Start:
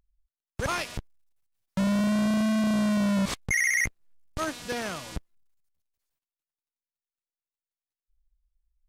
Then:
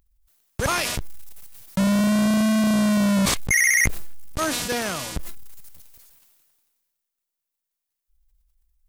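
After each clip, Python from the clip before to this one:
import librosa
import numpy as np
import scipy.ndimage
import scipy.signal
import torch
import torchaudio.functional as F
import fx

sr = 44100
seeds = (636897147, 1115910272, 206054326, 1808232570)

y = fx.high_shelf(x, sr, hz=8300.0, db=10.0)
y = fx.sustainer(y, sr, db_per_s=31.0)
y = y * 10.0 ** (5.0 / 20.0)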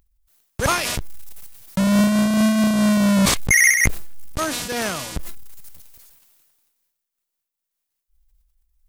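y = fx.am_noise(x, sr, seeds[0], hz=5.7, depth_pct=60)
y = y * 10.0 ** (5.0 / 20.0)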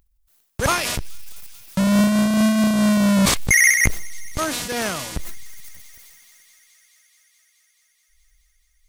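y = fx.echo_wet_highpass(x, sr, ms=214, feedback_pct=84, hz=3200.0, wet_db=-21.5)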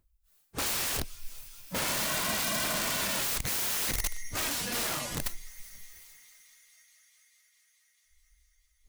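y = fx.phase_scramble(x, sr, seeds[1], window_ms=100)
y = (np.mod(10.0 ** (20.5 / 20.0) * y + 1.0, 2.0) - 1.0) / 10.0 ** (20.5 / 20.0)
y = y * 10.0 ** (-5.5 / 20.0)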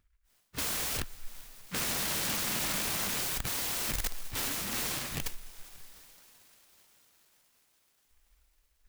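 y = fx.noise_mod_delay(x, sr, seeds[2], noise_hz=1700.0, depth_ms=0.44)
y = y * 10.0 ** (-1.0 / 20.0)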